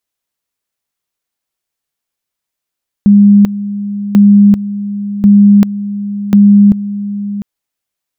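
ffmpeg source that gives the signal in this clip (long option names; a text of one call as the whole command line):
ffmpeg -f lavfi -i "aevalsrc='pow(10,(-1.5-14*gte(mod(t,1.09),0.39))/20)*sin(2*PI*203*t)':duration=4.36:sample_rate=44100" out.wav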